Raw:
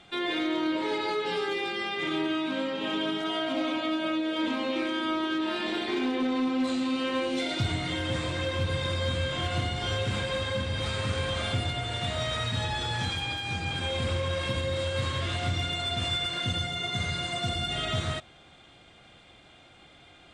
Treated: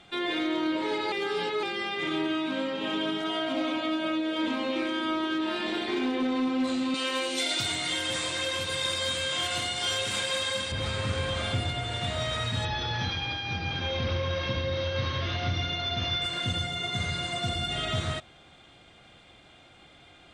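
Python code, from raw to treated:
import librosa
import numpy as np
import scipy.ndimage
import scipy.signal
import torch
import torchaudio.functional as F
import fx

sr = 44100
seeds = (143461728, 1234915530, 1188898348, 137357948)

y = fx.riaa(x, sr, side='recording', at=(6.94, 10.72))
y = fx.brickwall_lowpass(y, sr, high_hz=6400.0, at=(12.65, 16.22))
y = fx.edit(y, sr, fx.reverse_span(start_s=1.12, length_s=0.51), tone=tone)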